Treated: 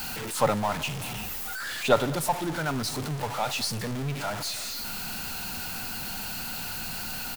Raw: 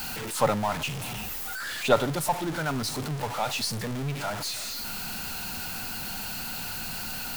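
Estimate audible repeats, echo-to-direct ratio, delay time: 1, −20.0 dB, 202 ms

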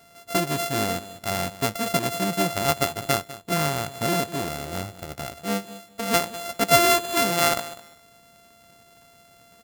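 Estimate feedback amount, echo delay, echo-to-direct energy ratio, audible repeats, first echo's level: 20%, 200 ms, −16.5 dB, 2, −16.5 dB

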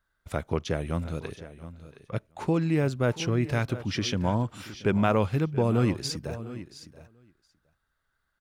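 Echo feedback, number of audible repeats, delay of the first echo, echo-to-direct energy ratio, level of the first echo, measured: repeats not evenly spaced, 2, 679 ms, −14.0 dB, −20.5 dB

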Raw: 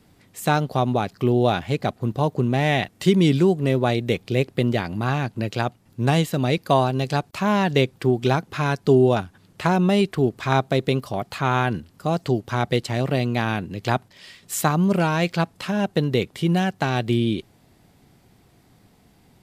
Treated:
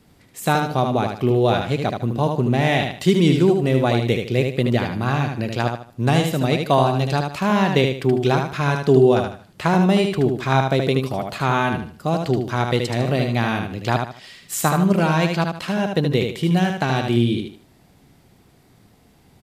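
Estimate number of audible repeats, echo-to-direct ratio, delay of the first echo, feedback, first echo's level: 3, −4.5 dB, 76 ms, 30%, −5.0 dB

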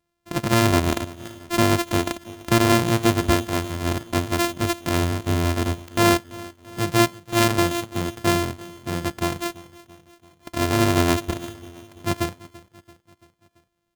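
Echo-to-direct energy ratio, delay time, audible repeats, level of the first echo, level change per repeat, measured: −18.5 dB, 337 ms, 3, −20.0 dB, −5.0 dB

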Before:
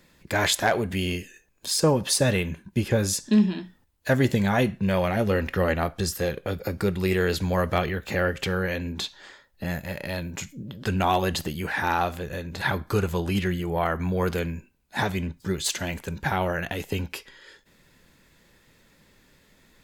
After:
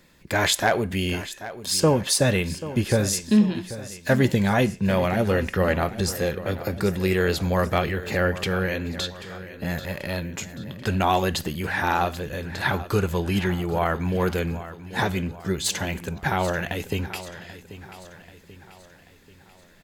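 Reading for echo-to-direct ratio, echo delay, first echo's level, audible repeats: −13.5 dB, 786 ms, −14.5 dB, 4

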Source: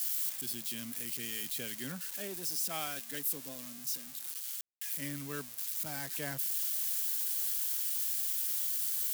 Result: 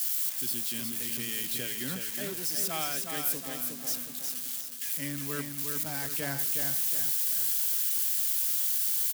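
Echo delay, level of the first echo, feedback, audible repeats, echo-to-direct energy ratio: 364 ms, −5.0 dB, 44%, 5, −4.0 dB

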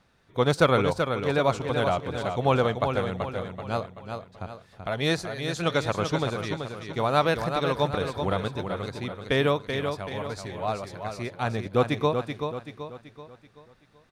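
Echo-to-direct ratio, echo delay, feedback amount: −5.5 dB, 382 ms, 44%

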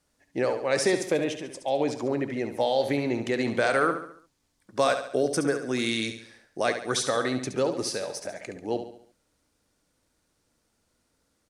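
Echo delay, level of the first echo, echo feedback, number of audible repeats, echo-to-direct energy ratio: 70 ms, −9.0 dB, 46%, 4, −8.0 dB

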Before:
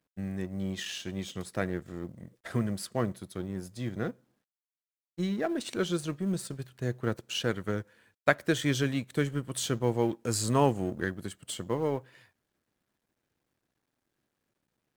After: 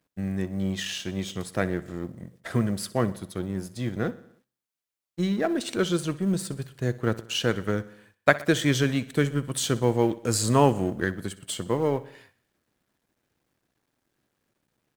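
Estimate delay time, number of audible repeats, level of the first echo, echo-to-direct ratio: 62 ms, 4, −18.5 dB, −16.5 dB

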